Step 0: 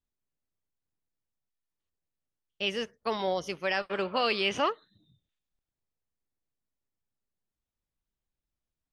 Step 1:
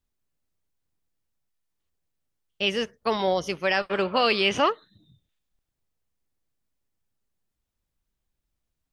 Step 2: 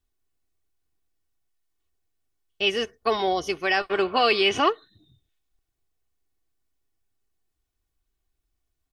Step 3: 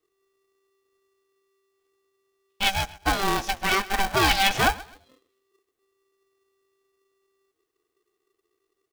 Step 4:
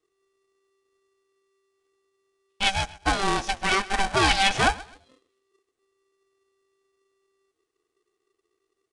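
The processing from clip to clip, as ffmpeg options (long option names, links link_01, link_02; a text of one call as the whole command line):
ffmpeg -i in.wav -af "lowshelf=frequency=150:gain=3.5,volume=5.5dB" out.wav
ffmpeg -i in.wav -af "aecho=1:1:2.7:0.56" out.wav
ffmpeg -i in.wav -af "aecho=1:1:128|256:0.1|0.031,aeval=exprs='val(0)*sgn(sin(2*PI*390*n/s))':channel_layout=same" out.wav
ffmpeg -i in.wav -af "aresample=22050,aresample=44100" out.wav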